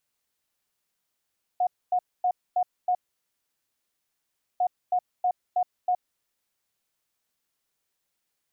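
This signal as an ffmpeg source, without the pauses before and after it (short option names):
-f lavfi -i "aevalsrc='0.1*sin(2*PI*725*t)*clip(min(mod(mod(t,3),0.32),0.07-mod(mod(t,3),0.32))/0.005,0,1)*lt(mod(t,3),1.6)':d=6:s=44100"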